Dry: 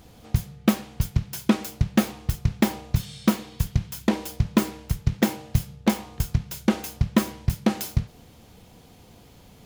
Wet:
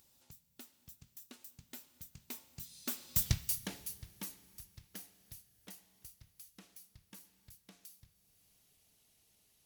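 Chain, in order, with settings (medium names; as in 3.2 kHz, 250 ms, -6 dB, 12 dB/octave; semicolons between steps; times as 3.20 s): Doppler pass-by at 3.28 s, 42 m/s, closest 2.6 m; harmonic-percussive split percussive +4 dB; pre-emphasis filter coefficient 0.9; Schroeder reverb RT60 2.5 s, combs from 29 ms, DRR 18 dB; in parallel at 0 dB: upward compressor, threshold -53 dBFS; on the sum: trim +1.5 dB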